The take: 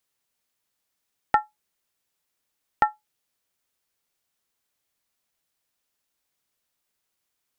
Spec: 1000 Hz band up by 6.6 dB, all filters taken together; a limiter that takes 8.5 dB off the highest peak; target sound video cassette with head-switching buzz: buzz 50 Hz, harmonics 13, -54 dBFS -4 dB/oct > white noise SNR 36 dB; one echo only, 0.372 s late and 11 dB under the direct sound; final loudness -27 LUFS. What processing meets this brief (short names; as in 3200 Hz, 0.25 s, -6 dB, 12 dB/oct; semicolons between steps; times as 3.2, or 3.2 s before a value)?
bell 1000 Hz +8.5 dB; limiter -9 dBFS; echo 0.372 s -11 dB; buzz 50 Hz, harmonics 13, -54 dBFS -4 dB/oct; white noise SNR 36 dB; gain +2.5 dB